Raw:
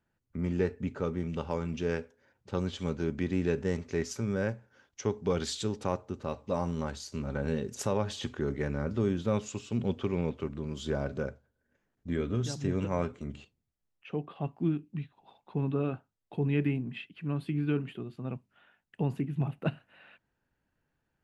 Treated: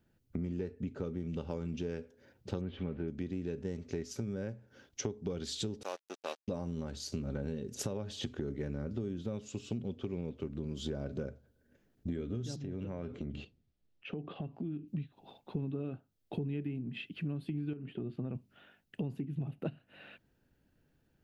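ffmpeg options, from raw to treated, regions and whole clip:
-filter_complex "[0:a]asettb=1/sr,asplit=3[s0][s1][s2];[s0]atrim=end=2.614[s3];[s1]atrim=start=2.61:end=3.08,asetpts=PTS-STARTPTS,afade=t=in:d=0.004:c=qsin,afade=t=out:st=0.466:d=0.004:c=qsin,aeval=exprs='val(0)+0.5*0.00668*sgn(val(0))':c=same,lowpass=f=2300:w=0.5412,lowpass=f=2300:w=1.3066,aemphasis=mode=production:type=75kf[s4];[s2]atrim=start=3.076[s5];[s3][s4]acrossfade=d=0.004:c1=hsin:c2=qsin[s6];[s6][s5]acrossfade=d=0.004:c1=qsin:c2=hsin,asettb=1/sr,asplit=3[s7][s8][s9];[s7]atrim=end=5.834[s10];[s8]atrim=start=5.83:end=6.48,asetpts=PTS-STARTPTS,afade=t=in:d=0.004:c=qsin,afade=t=out:st=0.646:d=0.004:c=qsin,aeval=exprs='sgn(val(0))*max(abs(val(0))-0.00794,0)':c=same,highpass=620,lowpass=7400,aemphasis=mode=production:type=bsi[s11];[s9]atrim=start=6.476[s12];[s10][s11]acrossfade=d=0.004:c1=hsin:c2=qsin[s13];[s13][s12]acrossfade=d=0.004:c1=qsin:c2=hsin,asettb=1/sr,asplit=3[s14][s15][s16];[s14]atrim=end=12.564[s17];[s15]atrim=start=12.56:end=14.88,asetpts=PTS-STARTPTS,afade=t=in:d=0.004:c=qsin,afade=t=out:st=2.316:d=0.004:c=qsin,lowpass=4300,acompressor=threshold=0.00708:ratio=4:attack=3.2:release=140:knee=1:detection=peak[s18];[s16]atrim=start=14.876[s19];[s17][s18]acrossfade=d=0.004:c1=hsin:c2=qsin[s20];[s20][s19]acrossfade=d=0.004:c1=qsin:c2=hsin,asettb=1/sr,asplit=3[s21][s22][s23];[s21]atrim=end=17.734[s24];[s22]atrim=start=17.73:end=18.35,asetpts=PTS-STARTPTS,afade=t=in:d=0.004:c=qsin,afade=t=out:st=0.616:d=0.004:c=qsin,bass=f=250:g=-1,treble=f=4000:g=-15,acompressor=threshold=0.02:ratio=6:attack=3.2:release=140:knee=1:detection=peak[s25];[s23]atrim=start=18.346[s26];[s24][s25]acrossfade=d=0.004:c1=hsin:c2=qsin[s27];[s27][s26]acrossfade=d=0.004:c1=qsin:c2=hsin,equalizer=f=250:t=o:w=1:g=4,equalizer=f=1000:t=o:w=1:g=-9,equalizer=f=2000:t=o:w=1:g=-5,equalizer=f=8000:t=o:w=1:g=-5,acompressor=threshold=0.00891:ratio=10,equalizer=f=230:t=o:w=0.77:g=-2.5,volume=2.51"

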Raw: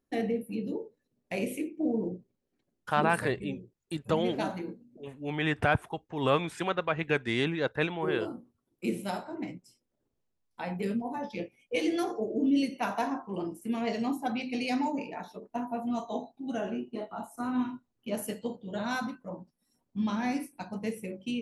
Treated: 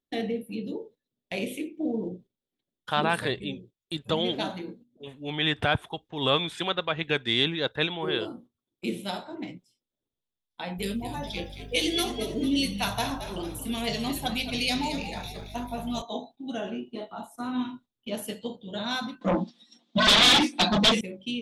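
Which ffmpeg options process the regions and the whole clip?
-filter_complex "[0:a]asettb=1/sr,asplit=3[s0][s1][s2];[s0]atrim=end=10.784[s3];[s1]atrim=start=10.78:end=16.02,asetpts=PTS-STARTPTS,afade=t=in:d=0.004:c=qsin,afade=t=out:st=5.236:d=0.004:c=qsin,aemphasis=mode=production:type=75fm,asplit=6[s4][s5][s6][s7][s8][s9];[s5]adelay=224,afreqshift=-80,volume=0.316[s10];[s6]adelay=448,afreqshift=-160,volume=0.148[s11];[s7]adelay=672,afreqshift=-240,volume=0.07[s12];[s8]adelay=896,afreqshift=-320,volume=0.0327[s13];[s9]adelay=1120,afreqshift=-400,volume=0.0155[s14];[s4][s10][s11][s12][s13][s14]amix=inputs=6:normalize=0,atrim=end_sample=231084,aeval=exprs='val(0)+0.00794*(sin(2*PI*50*n/s)+sin(2*PI*2*50*n/s)/2+sin(2*PI*3*50*n/s)/3+sin(2*PI*4*50*n/s)/4+sin(2*PI*5*50*n/s)/5)':c=same[s15];[s2]atrim=start=16.016[s16];[s3][s15]acrossfade=d=0.004:c1=hsin:c2=qsin[s17];[s17][s16]acrossfade=d=0.004:c1=qsin:c2=hsin,asettb=1/sr,asplit=3[s18][s19][s20];[s18]atrim=end=19.214[s21];[s19]atrim=start=19.21:end=21.01,asetpts=PTS-STARTPTS,afade=t=in:d=0.004:c=qsin,afade=t=out:st=1.796:d=0.004:c=qsin,highpass=f=240:w=0.5412,highpass=f=240:w=1.3066,equalizer=f=240:t=q:w=4:g=9,equalizer=f=370:t=q:w=4:g=-7,equalizer=f=540:t=q:w=4:g=-7,equalizer=f=950:t=q:w=4:g=-5,equalizer=f=1500:t=q:w=4:g=-4,equalizer=f=3800:t=q:w=4:g=4,lowpass=f=6300:w=0.5412,lowpass=f=6300:w=1.3066,aecho=1:1:5.8:0.87,atrim=end_sample=79380,aeval=exprs='0.112*sin(PI/2*7.08*val(0)/0.112)':c=same[s22];[s20]atrim=start=21.006[s23];[s21][s22]acrossfade=d=0.004:c1=hsin:c2=qsin[s24];[s24][s23]acrossfade=d=0.004:c1=qsin:c2=hsin,agate=range=0.316:threshold=0.00316:ratio=16:detection=peak,equalizer=f=3500:t=o:w=0.47:g=15"

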